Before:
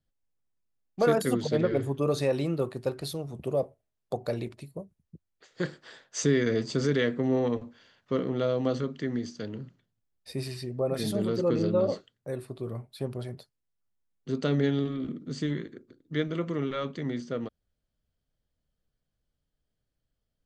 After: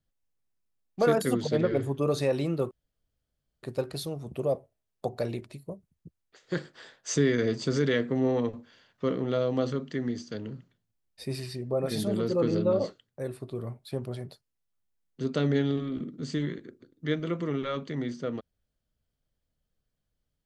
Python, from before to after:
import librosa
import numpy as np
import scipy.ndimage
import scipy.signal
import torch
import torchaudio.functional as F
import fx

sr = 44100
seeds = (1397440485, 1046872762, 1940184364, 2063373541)

y = fx.edit(x, sr, fx.insert_room_tone(at_s=2.71, length_s=0.92), tone=tone)